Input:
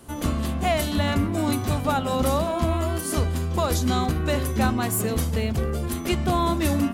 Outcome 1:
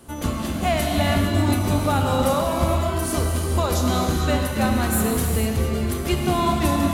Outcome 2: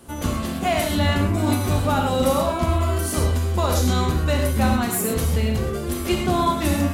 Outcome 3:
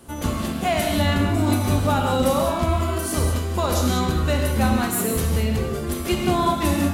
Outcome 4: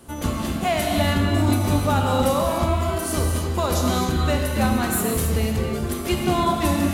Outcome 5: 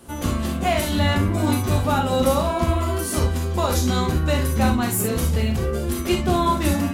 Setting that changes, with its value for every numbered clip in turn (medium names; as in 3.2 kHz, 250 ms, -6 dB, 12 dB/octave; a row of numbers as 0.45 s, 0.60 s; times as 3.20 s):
gated-style reverb, gate: 490 ms, 150 ms, 230 ms, 330 ms, 90 ms